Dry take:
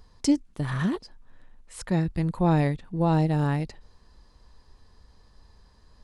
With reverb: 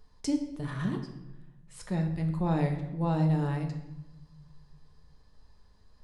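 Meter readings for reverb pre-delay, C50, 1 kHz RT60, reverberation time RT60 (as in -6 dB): 5 ms, 8.0 dB, 0.90 s, 1.0 s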